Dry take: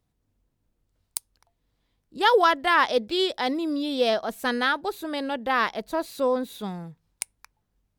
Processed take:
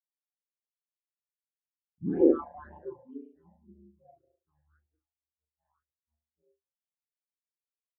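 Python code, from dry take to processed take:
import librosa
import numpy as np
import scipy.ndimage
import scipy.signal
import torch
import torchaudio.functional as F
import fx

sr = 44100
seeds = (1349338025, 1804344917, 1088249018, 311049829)

p1 = fx.spec_trails(x, sr, decay_s=0.33)
p2 = fx.doppler_pass(p1, sr, speed_mps=25, closest_m=1.8, pass_at_s=1.9)
p3 = scipy.signal.sosfilt(scipy.signal.butter(2, 2100.0, 'lowpass', fs=sr, output='sos'), p2)
p4 = fx.leveller(p3, sr, passes=5)
p5 = p4 + fx.room_flutter(p4, sr, wall_m=6.2, rt60_s=0.97, dry=0)
p6 = p5 * np.sin(2.0 * np.pi * 75.0 * np.arange(len(p5)) / sr)
p7 = fx.phaser_stages(p6, sr, stages=8, low_hz=370.0, high_hz=1300.0, hz=1.9, feedback_pct=10)
p8 = fx.tilt_shelf(p7, sr, db=4.5, hz=1100.0)
y = fx.spectral_expand(p8, sr, expansion=2.5)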